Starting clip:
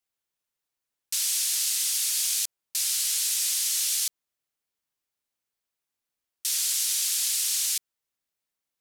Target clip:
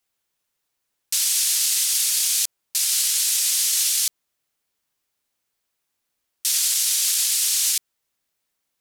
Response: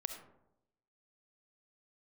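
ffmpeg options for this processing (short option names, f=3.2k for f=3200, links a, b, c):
-af "alimiter=limit=-20dB:level=0:latency=1:release=12,volume=8.5dB"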